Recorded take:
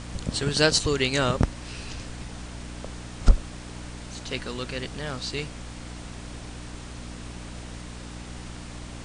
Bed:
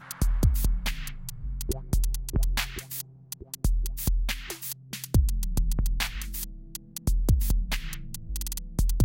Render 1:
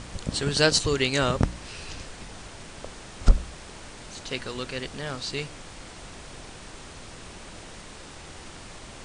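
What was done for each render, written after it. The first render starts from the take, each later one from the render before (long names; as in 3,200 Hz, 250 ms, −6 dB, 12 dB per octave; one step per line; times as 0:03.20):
hum removal 60 Hz, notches 5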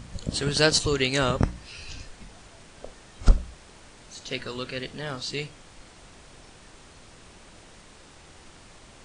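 noise reduction from a noise print 7 dB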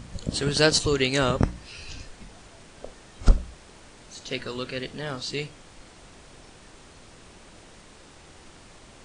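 parametric band 340 Hz +2 dB 1.9 octaves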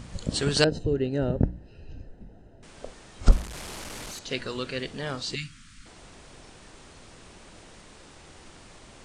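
0:00.64–0:02.63: moving average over 39 samples
0:03.32–0:04.19: linear delta modulator 64 kbit/s, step −32.5 dBFS
0:05.35–0:05.86: elliptic band-stop filter 250–1,300 Hz, stop band 50 dB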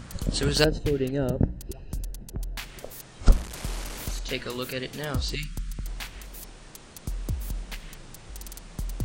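mix in bed −8 dB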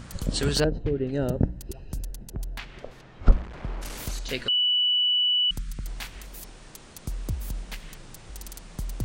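0:00.60–0:01.09: head-to-tape spacing loss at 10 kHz 36 dB
0:02.57–0:03.81: low-pass filter 3,800 Hz → 1,600 Hz
0:04.48–0:05.51: beep over 2,960 Hz −19.5 dBFS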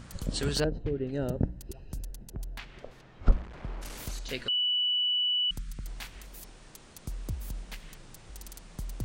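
level −5 dB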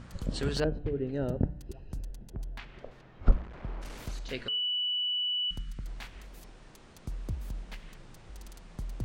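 low-pass filter 2,900 Hz 6 dB per octave
hum removal 147.5 Hz, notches 23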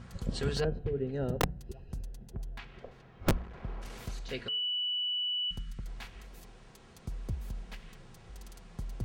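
notch comb filter 300 Hz
wrap-around overflow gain 18 dB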